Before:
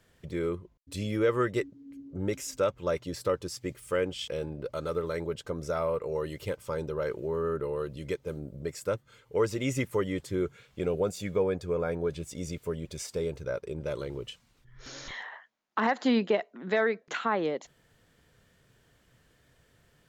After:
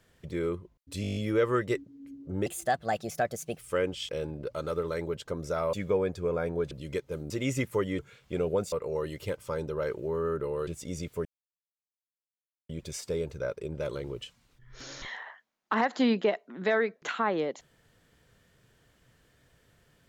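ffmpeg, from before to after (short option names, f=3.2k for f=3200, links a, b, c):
-filter_complex "[0:a]asplit=17[a][b][c][d][e][f][g][h][i][j][k][l][m][n][o][p][q];[a]atrim=end=1.042[r];[b]atrim=start=1.018:end=1.042[s];[c]atrim=start=1.018:end=1.042[t];[d]atrim=start=1.018:end=1.042[u];[e]atrim=start=1.018:end=1.042[v];[f]atrim=start=1.018:end=1.042[w];[g]atrim=start=1.018:end=1.042[x];[h]atrim=start=1.018:end=2.324[y];[i]atrim=start=2.32:end=3.78,asetpts=PTS-STARTPTS,asetrate=56889,aresample=44100[z];[j]atrim=start=3.776:end=5.922[aa];[k]atrim=start=11.188:end=12.172[ab];[l]atrim=start=7.868:end=8.462[ac];[m]atrim=start=9.498:end=10.192[ad];[n]atrim=start=10.458:end=11.192[ae];[o]atrim=start=5.918:end=7.872[af];[p]atrim=start=12.168:end=12.75,asetpts=PTS-STARTPTS,afade=t=out:st=0.578:d=0.004:c=hsin,apad=pad_dur=1.44[ag];[q]atrim=start=12.75,asetpts=PTS-STARTPTS,afade=t=in:d=0.004:c=hsin[ah];[r][s]acrossfade=d=0.004:c1=hsin:c2=hsin[ai];[ai][t]acrossfade=d=0.004:c1=hsin:c2=hsin[aj];[aj][u]acrossfade=d=0.004:c1=hsin:c2=hsin[ak];[ak][v]acrossfade=d=0.004:c1=hsin:c2=hsin[al];[al][w]acrossfade=d=0.004:c1=hsin:c2=hsin[am];[am][x]acrossfade=d=0.004:c1=hsin:c2=hsin[an];[an][y]acrossfade=d=0.004:c1=hsin:c2=hsin[ao];[ao][z]acrossfade=d=0.004:c1=hsin:c2=hsin[ap];[ap][aa]acrossfade=d=0.004:c1=hsin:c2=hsin[aq];[aq][ab]acrossfade=d=0.004:c1=hsin:c2=hsin[ar];[ar][ac]acrossfade=d=0.004:c1=hsin:c2=hsin[as];[as][ad]acrossfade=d=0.004:c1=hsin:c2=hsin[at];[at][ae]acrossfade=d=0.004:c1=hsin:c2=hsin[au];[au][af]acrossfade=d=0.004:c1=hsin:c2=hsin[av];[ag][ah]concat=n=2:v=0:a=1[aw];[av][aw]acrossfade=d=0.004:c1=hsin:c2=hsin"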